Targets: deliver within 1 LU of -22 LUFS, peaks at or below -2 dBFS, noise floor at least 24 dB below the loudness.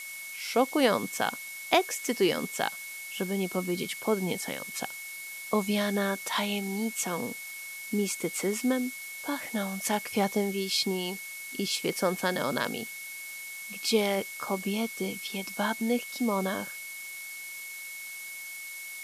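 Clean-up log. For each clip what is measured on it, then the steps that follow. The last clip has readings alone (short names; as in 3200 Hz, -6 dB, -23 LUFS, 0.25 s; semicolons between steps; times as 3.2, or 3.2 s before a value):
steady tone 2200 Hz; tone level -40 dBFS; noise floor -41 dBFS; noise floor target -55 dBFS; loudness -30.5 LUFS; peak -7.0 dBFS; loudness target -22.0 LUFS
-> notch 2200 Hz, Q 30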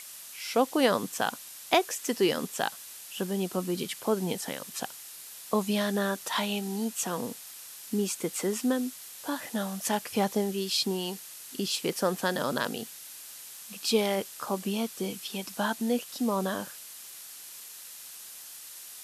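steady tone none; noise floor -46 dBFS; noise floor target -55 dBFS
-> noise print and reduce 9 dB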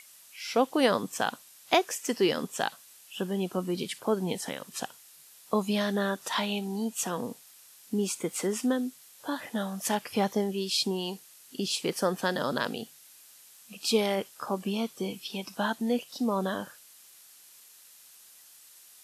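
noise floor -55 dBFS; loudness -30.5 LUFS; peak -7.5 dBFS; loudness target -22.0 LUFS
-> gain +8.5 dB; limiter -2 dBFS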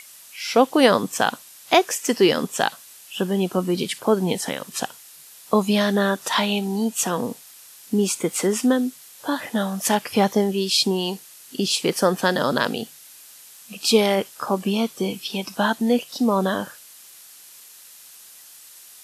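loudness -22.0 LUFS; peak -2.0 dBFS; noise floor -46 dBFS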